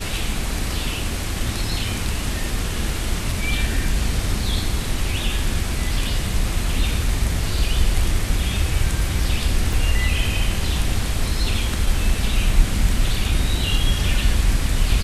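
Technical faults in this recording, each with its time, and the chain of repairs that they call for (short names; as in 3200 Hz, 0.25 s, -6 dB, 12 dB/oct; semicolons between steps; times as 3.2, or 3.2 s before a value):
9.73 gap 3.3 ms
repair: interpolate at 9.73, 3.3 ms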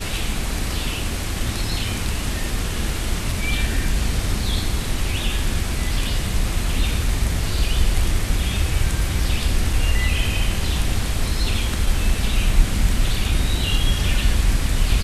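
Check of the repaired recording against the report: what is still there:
none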